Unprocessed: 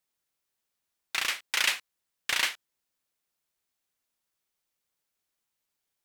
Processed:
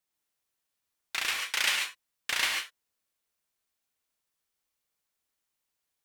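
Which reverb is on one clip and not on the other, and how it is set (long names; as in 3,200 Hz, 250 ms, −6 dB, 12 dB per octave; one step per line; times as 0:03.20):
reverb whose tail is shaped and stops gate 160 ms rising, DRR 1.5 dB
level −2.5 dB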